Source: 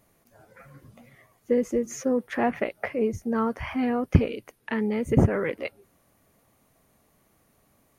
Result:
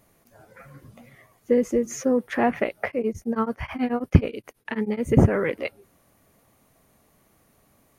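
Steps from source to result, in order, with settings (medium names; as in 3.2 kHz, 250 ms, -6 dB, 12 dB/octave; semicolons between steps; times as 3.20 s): 2.87–5.04 s: tremolo of two beating tones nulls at 9.3 Hz; trim +3 dB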